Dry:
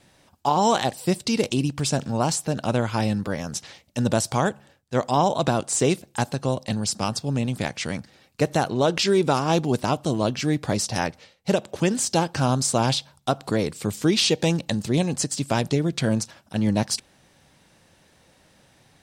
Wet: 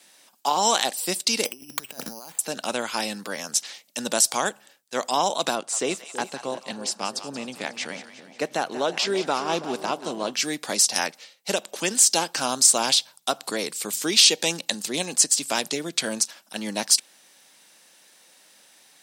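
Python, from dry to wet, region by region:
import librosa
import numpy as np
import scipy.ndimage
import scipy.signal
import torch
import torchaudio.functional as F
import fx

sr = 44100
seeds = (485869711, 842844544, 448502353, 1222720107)

y = fx.chain(x, sr, fx.over_compress(threshold_db=-30.0, ratio=-0.5),
    fx.resample_bad(factor=8, down='filtered', up='hold'), at=(1.45, 2.39))
y = fx.chain(y, sr, fx.lowpass(hz=2000.0, slope=6),
    fx.echo_split(split_hz=690.0, low_ms=327, high_ms=181, feedback_pct=52, wet_db=-12), at=(5.55, 10.34))
y = scipy.signal.sosfilt(scipy.signal.butter(4, 190.0, 'highpass', fs=sr, output='sos'), y)
y = fx.tilt_eq(y, sr, slope=3.5)
y = y * librosa.db_to_amplitude(-1.0)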